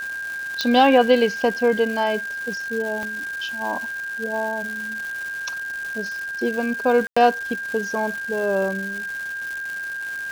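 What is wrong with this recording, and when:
crackle 470/s -29 dBFS
tone 1600 Hz -27 dBFS
0.61 pop -8 dBFS
3.03 pop -16 dBFS
7.07–7.17 gap 95 ms

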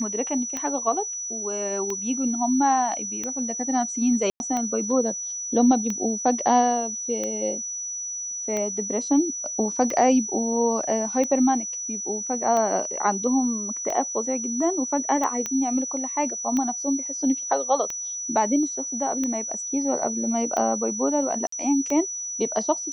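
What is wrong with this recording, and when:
tick 45 rpm -15 dBFS
tone 5900 Hz -29 dBFS
4.3–4.4 gap 0.101 s
15.46 pop -13 dBFS
21.47–21.52 gap 54 ms

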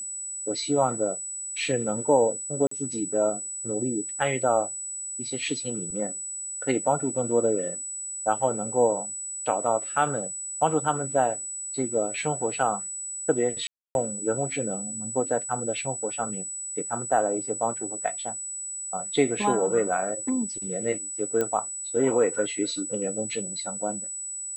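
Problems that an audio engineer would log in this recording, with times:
tone 7900 Hz -32 dBFS
2.67–2.71 gap 44 ms
13.67–13.95 gap 0.281 s
21.41 pop -13 dBFS

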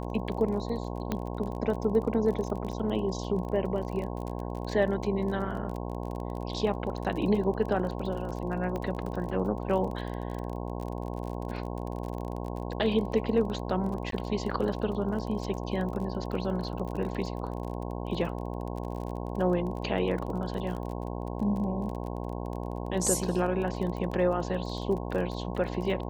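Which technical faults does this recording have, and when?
buzz 60 Hz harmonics 18 -35 dBFS
crackle 29/s -35 dBFS
1.12 pop -16 dBFS
8.76 pop -22 dBFS
14.11–14.12 gap 13 ms

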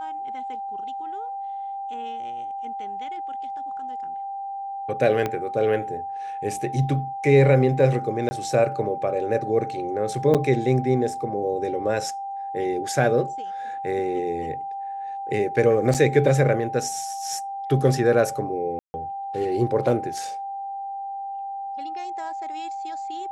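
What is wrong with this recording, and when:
tone 790 Hz -29 dBFS
5.26 pop -12 dBFS
8.29–8.31 gap 20 ms
10.34–10.35 gap 7.5 ms
15.94–15.95 gap 7.1 ms
18.79–18.94 gap 0.15 s

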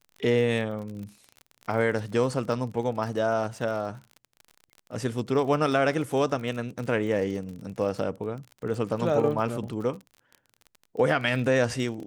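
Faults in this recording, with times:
crackle 42/s -35 dBFS

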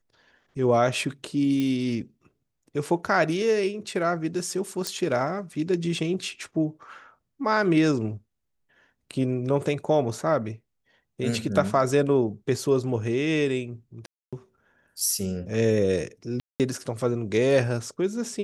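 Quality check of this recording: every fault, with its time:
1.6 pop -16 dBFS
4.87 pop -13 dBFS
14.06–14.33 gap 0.266 s
16.4–16.6 gap 0.198 s

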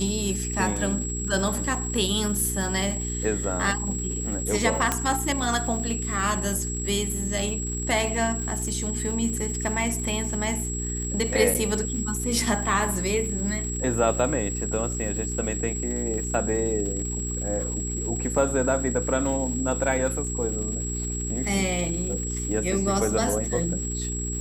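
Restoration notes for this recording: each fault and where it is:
crackle 180/s -34 dBFS
hum 60 Hz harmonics 7 -31 dBFS
tone 7700 Hz -31 dBFS
4.92 pop -7 dBFS
11.54–11.55 gap 8 ms

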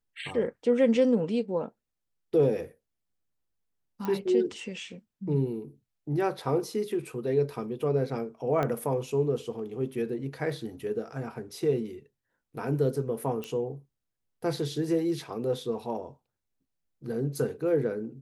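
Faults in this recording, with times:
4.05 pop -20 dBFS
8.63 pop -17 dBFS
13.44 pop -21 dBFS

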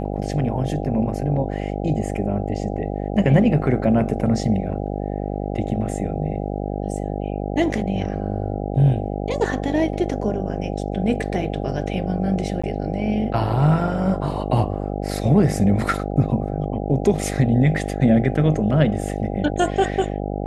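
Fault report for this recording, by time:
buzz 50 Hz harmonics 16 -26 dBFS
12.62–12.63 gap 15 ms

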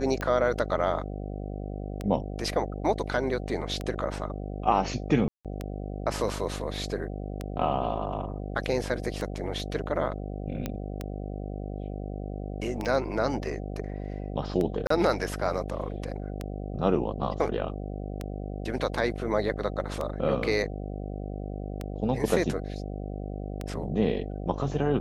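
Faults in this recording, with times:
buzz 50 Hz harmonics 15 -35 dBFS
tick 33 1/3 rpm -18 dBFS
5.28–5.45 gap 0.167 s
10.66 pop -16 dBFS
12.85 gap 3.6 ms
14.87–14.9 gap 34 ms

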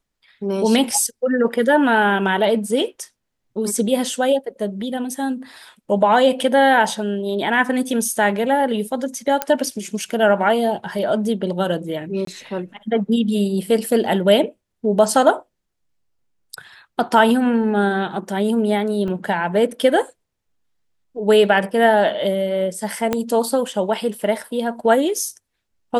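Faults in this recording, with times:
9.42 pop -4 dBFS
12.25–12.27 gap 23 ms
19.08 gap 2.7 ms
23.13 pop -6 dBFS

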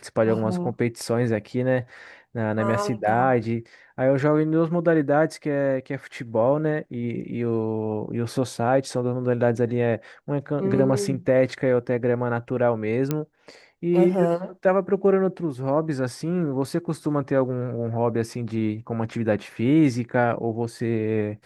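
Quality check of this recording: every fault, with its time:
13.11 pop -10 dBFS

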